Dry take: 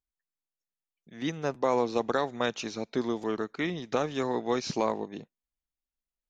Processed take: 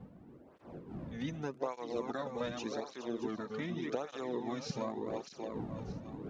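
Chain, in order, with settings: regenerating reverse delay 0.312 s, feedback 49%, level -6.5 dB; wind noise 350 Hz -46 dBFS; low shelf 440 Hz +4.5 dB; compressor 2.5:1, threshold -42 dBFS, peak gain reduction 15.5 dB; tape flanging out of phase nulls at 0.85 Hz, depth 3.2 ms; gain +4 dB

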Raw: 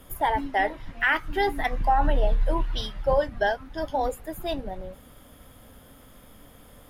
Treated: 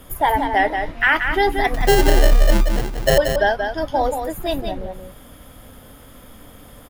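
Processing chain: 1.74–3.18 sample-rate reducer 1200 Hz, jitter 0%; on a send: echo 0.18 s -6.5 dB; on the sum: gain +6.5 dB

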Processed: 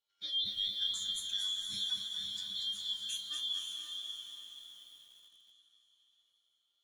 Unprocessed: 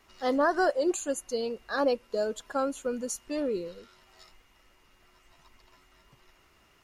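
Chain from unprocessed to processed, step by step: four-band scrambler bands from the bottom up 2413; gate -49 dBFS, range -18 dB; tilt shelf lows -6 dB, about 1100 Hz; limiter -18 dBFS, peak gain reduction 8 dB; resonator 100 Hz, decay 0.22 s, harmonics all, mix 90%; diffused feedback echo 0.549 s, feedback 41%, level -5 dB; lo-fi delay 0.236 s, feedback 35%, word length 9-bit, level -6 dB; gain -5.5 dB

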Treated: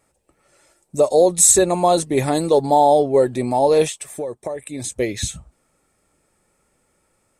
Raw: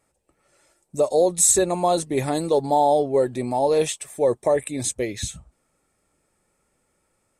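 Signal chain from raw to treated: 3.86–4.92 compressor 6:1, threshold -30 dBFS, peak gain reduction 14 dB; gain +4.5 dB

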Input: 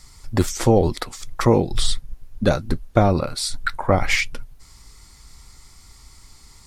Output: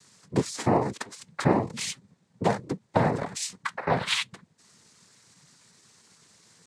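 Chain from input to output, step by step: noise vocoder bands 6; pitch shift +1 st; gain -6 dB

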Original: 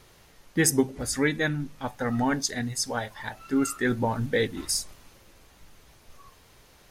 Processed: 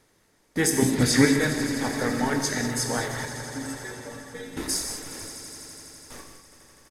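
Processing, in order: per-bin compression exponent 0.6; 3.25–4.57 metallic resonator 86 Hz, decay 0.78 s, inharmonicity 0.008; gate with hold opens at -27 dBFS; 0.82–1.25 graphic EQ 125/250/2000/4000 Hz +10/+9/+7/+10 dB; on a send: swelling echo 83 ms, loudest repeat 5, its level -14 dB; on the sum: reverb removal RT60 0.87 s; doubler 21 ms -13 dB; non-linear reverb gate 0.23 s flat, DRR 3 dB; gain -3.5 dB

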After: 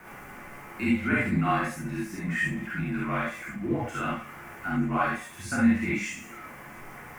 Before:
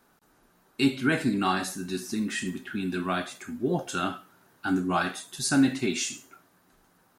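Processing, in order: zero-crossing step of -37 dBFS; resonant high shelf 2900 Hz -9 dB, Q 3; non-linear reverb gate 90 ms rising, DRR -5.5 dB; frequency shift -39 Hz; gain -8 dB

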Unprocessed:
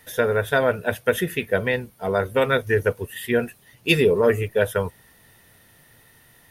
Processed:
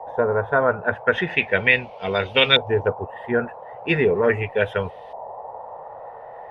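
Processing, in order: band noise 460–910 Hz -39 dBFS; LFO low-pass saw up 0.39 Hz 870–3400 Hz; 1.12–2.88 band shelf 3900 Hz +12.5 dB; gain -1.5 dB

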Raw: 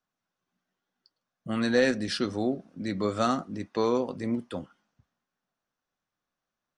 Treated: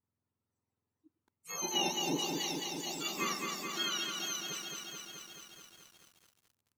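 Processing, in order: spectrum mirrored in octaves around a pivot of 1200 Hz; lo-fi delay 0.215 s, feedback 80%, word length 9-bit, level -4 dB; gain -7 dB

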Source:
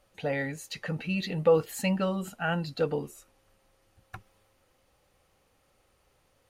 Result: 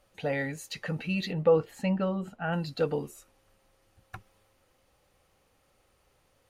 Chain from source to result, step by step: 1.31–2.52 LPF 1900 Hz -> 1100 Hz 6 dB/oct

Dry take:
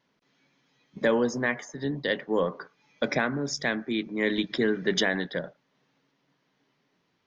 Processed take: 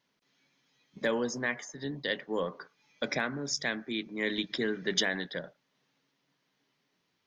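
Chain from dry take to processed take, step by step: high shelf 2400 Hz +8.5 dB; gain -7 dB

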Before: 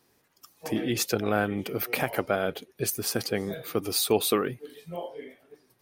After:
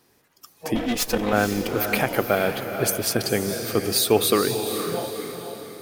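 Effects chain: 0.75–1.33 minimum comb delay 4 ms; diffused feedback echo 0.47 s, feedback 45%, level -7 dB; gain +5 dB

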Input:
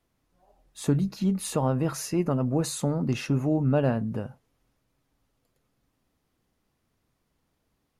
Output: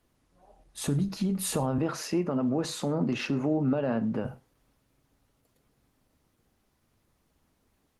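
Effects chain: 1.78–4.25 three-band isolator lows -17 dB, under 160 Hz, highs -15 dB, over 6000 Hz; compressor 2:1, threshold -29 dBFS, peak gain reduction 6.5 dB; limiter -24 dBFS, peak gain reduction 6.5 dB; non-linear reverb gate 0.15 s falling, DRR 12 dB; gain +5 dB; Opus 20 kbps 48000 Hz

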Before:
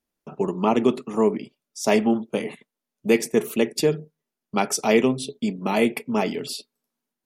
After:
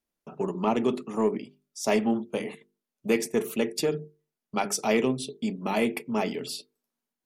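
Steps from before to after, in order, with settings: in parallel at -6 dB: soft clip -16.5 dBFS, distortion -11 dB; on the sum: notches 50/100/150/200/250/300/350/400/450 Hz; gain -7 dB

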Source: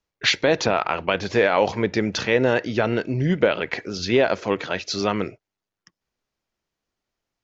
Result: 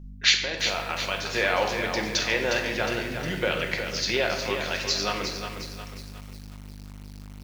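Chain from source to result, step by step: 0.43–1.18 level quantiser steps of 12 dB; tilt +3.5 dB/oct; hum 50 Hz, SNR 12 dB; shoebox room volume 540 m³, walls mixed, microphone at 0.95 m; lo-fi delay 0.36 s, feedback 55%, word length 6-bit, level -7 dB; gain -6.5 dB

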